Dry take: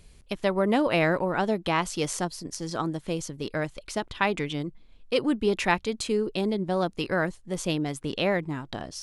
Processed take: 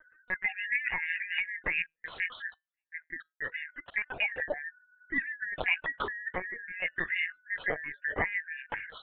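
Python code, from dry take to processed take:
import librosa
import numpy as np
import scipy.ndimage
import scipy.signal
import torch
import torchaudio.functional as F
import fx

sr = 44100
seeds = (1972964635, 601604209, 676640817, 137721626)

y = fx.band_shuffle(x, sr, order='3142')
y = scipy.signal.sosfilt(scipy.signal.butter(2, 92.0, 'highpass', fs=sr, output='sos'), y)
y = fx.spec_gate(y, sr, threshold_db=-25, keep='strong')
y = fx.peak_eq(y, sr, hz=630.0, db=14.5, octaves=1.8)
y = fx.hpss(y, sr, part='harmonic', gain_db=-16)
y = fx.step_gate(y, sr, bpm=154, pattern='..x.x..xxxxx..', floor_db=-60.0, edge_ms=4.5, at=(1.82, 3.93), fade=0.02)
y = fx.comb_fb(y, sr, f0_hz=160.0, decay_s=0.2, harmonics='all', damping=0.0, mix_pct=30)
y = fx.lpc_vocoder(y, sr, seeds[0], excitation='pitch_kept', order=16)
y = y * librosa.db_to_amplitude(-1.5)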